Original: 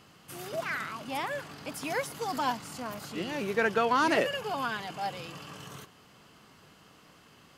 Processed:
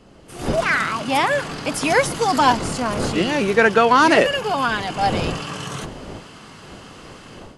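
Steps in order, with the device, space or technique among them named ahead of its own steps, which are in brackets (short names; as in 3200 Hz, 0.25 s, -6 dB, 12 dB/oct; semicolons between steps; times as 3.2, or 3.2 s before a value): smartphone video outdoors (wind noise 450 Hz -46 dBFS; AGC gain up to 15.5 dB; AAC 96 kbps 24000 Hz)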